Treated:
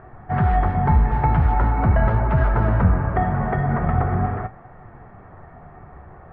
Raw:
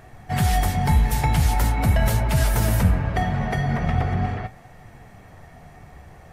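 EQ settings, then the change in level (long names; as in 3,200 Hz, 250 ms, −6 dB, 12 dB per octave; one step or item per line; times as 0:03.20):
low-pass with resonance 1,300 Hz, resonance Q 2.1
high-frequency loss of the air 210 metres
parametric band 370 Hz +5.5 dB 0.28 octaves
+1.5 dB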